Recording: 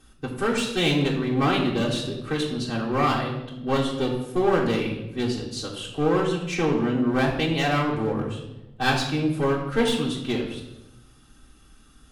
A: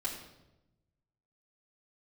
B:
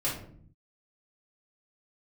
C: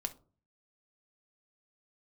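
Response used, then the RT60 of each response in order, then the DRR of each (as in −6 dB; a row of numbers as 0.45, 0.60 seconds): A; 0.95, 0.55, 0.40 seconds; −7.0, −7.5, 6.5 decibels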